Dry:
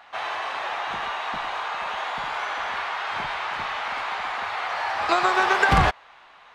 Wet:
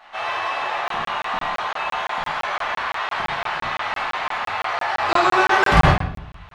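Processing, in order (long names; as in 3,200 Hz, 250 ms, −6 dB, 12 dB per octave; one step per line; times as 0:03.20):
rectangular room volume 110 cubic metres, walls mixed, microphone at 1.5 metres
regular buffer underruns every 0.17 s, samples 1,024, zero, from 0:00.88
level −2 dB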